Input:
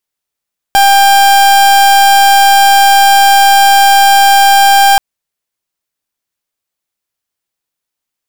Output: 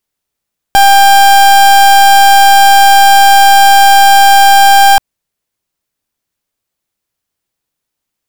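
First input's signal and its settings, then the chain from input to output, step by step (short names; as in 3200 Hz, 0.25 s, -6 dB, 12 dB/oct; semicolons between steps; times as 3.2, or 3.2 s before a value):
pulse 794 Hz, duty 38% -5.5 dBFS 4.23 s
low shelf 420 Hz +7 dB; in parallel at -9 dB: wavefolder -9.5 dBFS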